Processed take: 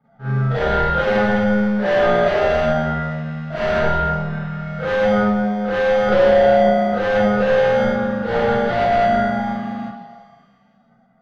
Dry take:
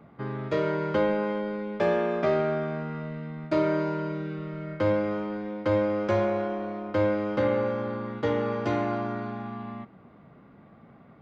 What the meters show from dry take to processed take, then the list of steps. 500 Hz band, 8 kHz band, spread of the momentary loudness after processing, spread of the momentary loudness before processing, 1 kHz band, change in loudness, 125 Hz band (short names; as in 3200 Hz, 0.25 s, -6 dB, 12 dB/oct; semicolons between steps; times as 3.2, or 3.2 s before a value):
+10.0 dB, n/a, 11 LU, 10 LU, +13.0 dB, +10.5 dB, +9.5 dB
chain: per-bin expansion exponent 2; overdrive pedal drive 30 dB, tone 1600 Hz, clips at -14.5 dBFS; fixed phaser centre 1600 Hz, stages 8; in parallel at -7.5 dB: sample-and-hold 33×; on the sum: wavefolder -19 dBFS; transient shaper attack -8 dB, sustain +10 dB; air absorption 240 m; delay with a stepping band-pass 0.167 s, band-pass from 350 Hz, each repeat 0.7 oct, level -8.5 dB; Schroeder reverb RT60 0.33 s, combs from 31 ms, DRR -9.5 dB